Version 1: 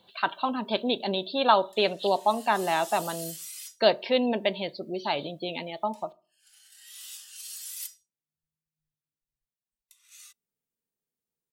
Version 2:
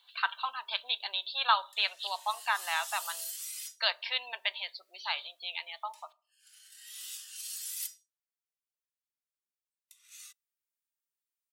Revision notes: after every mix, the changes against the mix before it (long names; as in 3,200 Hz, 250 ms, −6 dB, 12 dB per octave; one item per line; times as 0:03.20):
master: add high-pass filter 1,100 Hz 24 dB per octave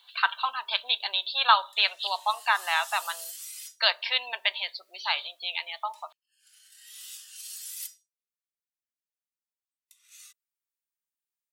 speech +6.0 dB
background: send off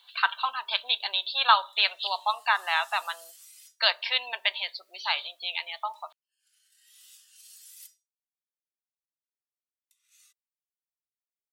background −10.5 dB